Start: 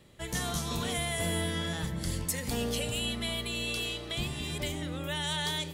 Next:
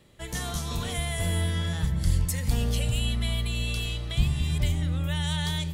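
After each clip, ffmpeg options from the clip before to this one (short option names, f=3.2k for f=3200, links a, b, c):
-af "asubboost=boost=9.5:cutoff=120"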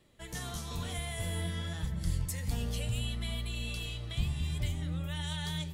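-af "flanger=delay=2.6:depth=9.8:regen=61:speed=0.57:shape=triangular,volume=-3dB"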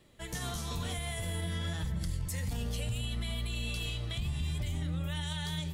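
-af "alimiter=level_in=6dB:limit=-24dB:level=0:latency=1:release=52,volume=-6dB,volume=3.5dB"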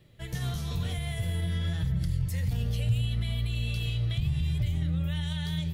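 -af "equalizer=f=125:t=o:w=1:g=10,equalizer=f=250:t=o:w=1:g=-5,equalizer=f=1k:t=o:w=1:g=-7,equalizer=f=8k:t=o:w=1:g=-9,volume=2dB"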